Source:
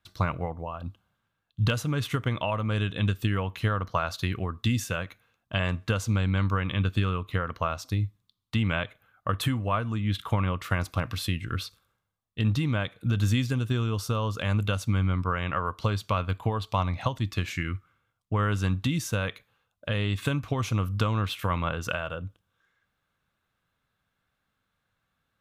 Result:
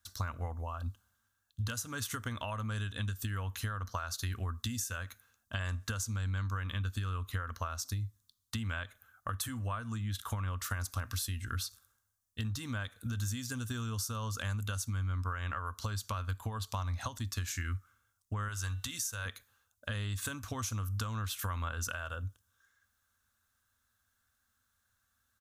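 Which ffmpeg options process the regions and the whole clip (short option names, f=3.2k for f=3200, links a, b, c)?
-filter_complex "[0:a]asettb=1/sr,asplit=3[a][b][c];[a]atrim=end=18.484[d];[b]atrim=start=18.48:end=19.26,asetpts=PTS-STARTPTS,afade=t=in:d=0.004:c=qsin,afade=t=out:st=0.776:d=0.004:c=qsin,equalizer=f=210:t=o:w=1.9:g=-12,bandreject=f=247.4:t=h:w=4,bandreject=f=494.8:t=h:w=4,bandreject=f=742.2:t=h:w=4,bandreject=f=989.6:t=h:w=4,bandreject=f=1.237k:t=h:w=4,bandreject=f=1.4844k:t=h:w=4,bandreject=f=1.7318k:t=h:w=4,bandreject=f=1.9792k:t=h:w=4,bandreject=f=2.2266k:t=h:w=4,bandreject=f=2.474k:t=h:w=4,bandreject=f=2.7214k:t=h:w=4,bandreject=f=2.9688k:t=h:w=4,bandreject=f=3.2162k:t=h:w=4,bandreject=f=3.4636k:t=h:w=4,bandreject=f=3.711k:t=h:w=4,bandreject=f=3.9584k:t=h:w=4,bandreject=f=4.2058k:t=h:w=4,bandreject=f=4.4532k:t=h:w=4[e];[c]atrim=start=19.256[f];[d][e]acrossfade=d=0.004:c1=hsin:c2=qsin[g];[g][f]acrossfade=d=0.004:c1=qsin:c2=hsin,firequalizer=gain_entry='entry(100,0);entry(150,-17);entry(230,0);entry(320,-9);entry(1600,4);entry(2200,-6);entry(6100,13)':delay=0.05:min_phase=1,acompressor=threshold=-32dB:ratio=6,equalizer=f=79:t=o:w=0.65:g=4.5,volume=-2.5dB"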